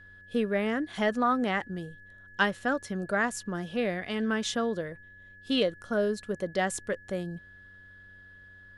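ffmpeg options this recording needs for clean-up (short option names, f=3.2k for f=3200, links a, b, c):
-af "bandreject=f=94.9:t=h:w=4,bandreject=f=189.8:t=h:w=4,bandreject=f=284.7:t=h:w=4,bandreject=f=379.6:t=h:w=4,bandreject=f=474.5:t=h:w=4,bandreject=f=569.4:t=h:w=4,bandreject=f=1.7k:w=30"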